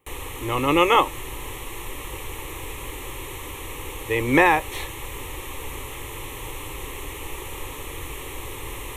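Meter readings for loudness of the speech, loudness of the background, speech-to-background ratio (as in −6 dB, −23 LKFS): −20.0 LKFS, −34.5 LKFS, 14.5 dB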